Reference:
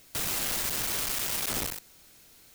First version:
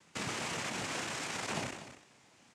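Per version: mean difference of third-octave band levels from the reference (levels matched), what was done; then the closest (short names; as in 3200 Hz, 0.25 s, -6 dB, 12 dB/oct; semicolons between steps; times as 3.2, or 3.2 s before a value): 8.0 dB: LPF 3100 Hz 12 dB/oct; noise vocoder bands 4; doubler 30 ms -12.5 dB; echo 0.243 s -12.5 dB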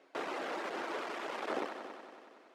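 13.5 dB: HPF 320 Hz 24 dB/oct; reverb removal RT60 0.69 s; Bessel low-pass 1000 Hz, order 2; multi-head echo 93 ms, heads all three, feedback 56%, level -14.5 dB; gain +6 dB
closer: first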